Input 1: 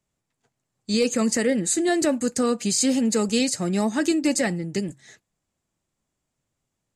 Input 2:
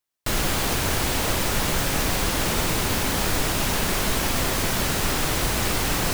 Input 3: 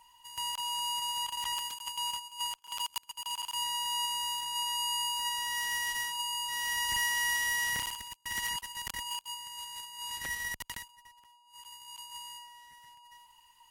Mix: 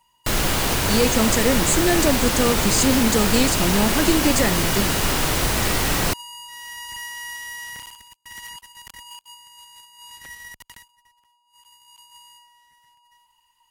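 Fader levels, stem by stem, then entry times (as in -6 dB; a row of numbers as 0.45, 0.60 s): +1.5, +2.5, -3.5 dB; 0.00, 0.00, 0.00 s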